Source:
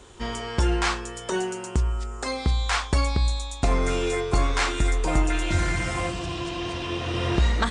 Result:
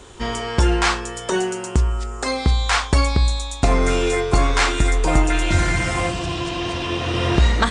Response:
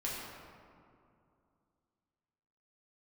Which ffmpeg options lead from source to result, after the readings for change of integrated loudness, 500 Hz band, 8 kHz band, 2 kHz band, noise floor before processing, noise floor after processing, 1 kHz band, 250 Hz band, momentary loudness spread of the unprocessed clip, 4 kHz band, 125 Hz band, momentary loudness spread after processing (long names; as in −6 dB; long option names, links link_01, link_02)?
+5.5 dB, +6.0 dB, +6.0 dB, +6.0 dB, −37 dBFS, −32 dBFS, +6.0 dB, +5.5 dB, 7 LU, +6.0 dB, +5.5 dB, 7 LU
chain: -filter_complex "[0:a]asplit=2[link_01][link_02];[1:a]atrim=start_sample=2205,atrim=end_sample=3087[link_03];[link_02][link_03]afir=irnorm=-1:irlink=0,volume=-14.5dB[link_04];[link_01][link_04]amix=inputs=2:normalize=0,volume=5dB"